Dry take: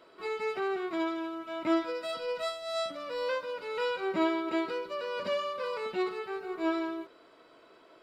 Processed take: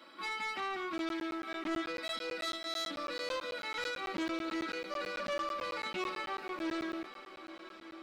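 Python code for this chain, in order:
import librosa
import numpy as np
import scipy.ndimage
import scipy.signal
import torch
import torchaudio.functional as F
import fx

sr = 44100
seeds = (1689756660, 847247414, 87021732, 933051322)

p1 = scipy.signal.sosfilt(scipy.signal.ellip(4, 1.0, 40, 170.0, 'highpass', fs=sr, output='sos'), x)
p2 = fx.peak_eq(p1, sr, hz=480.0, db=-11.0, octaves=1.4)
p3 = fx.notch(p2, sr, hz=6900.0, q=6.8)
p4 = p3 + 0.87 * np.pad(p3, (int(3.6 * sr / 1000.0), 0))[:len(p3)]
p5 = fx.rider(p4, sr, range_db=10, speed_s=0.5)
p6 = p4 + F.gain(torch.from_numpy(p5), 0.0).numpy()
p7 = 10.0 ** (-29.0 / 20.0) * np.tanh(p6 / 10.0 ** (-29.0 / 20.0))
p8 = p7 + fx.echo_diffused(p7, sr, ms=947, feedback_pct=46, wet_db=-12.5, dry=0)
p9 = fx.buffer_crackle(p8, sr, first_s=0.98, period_s=0.11, block=512, kind='zero')
p10 = fx.doppler_dist(p9, sr, depth_ms=0.16)
y = F.gain(torch.from_numpy(p10), -3.0).numpy()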